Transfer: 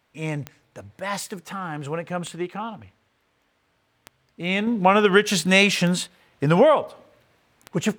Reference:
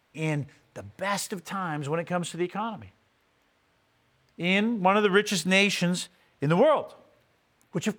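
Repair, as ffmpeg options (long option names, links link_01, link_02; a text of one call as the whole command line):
ffmpeg -i in.wav -af "adeclick=threshold=4,asetnsamples=nb_out_samples=441:pad=0,asendcmd='4.67 volume volume -5dB',volume=0dB" out.wav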